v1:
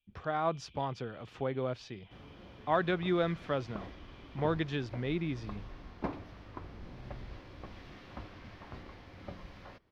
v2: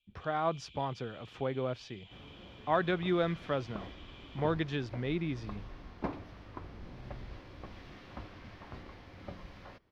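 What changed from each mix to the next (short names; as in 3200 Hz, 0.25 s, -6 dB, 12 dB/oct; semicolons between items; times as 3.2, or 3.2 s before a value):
first sound: remove air absorption 370 m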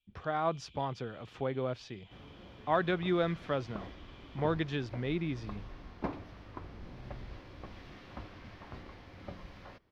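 first sound -5.0 dB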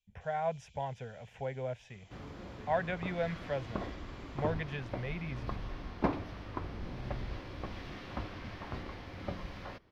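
speech: add fixed phaser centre 1200 Hz, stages 6; first sound: add resonant high shelf 4500 Hz +10.5 dB, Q 3; second sound +6.0 dB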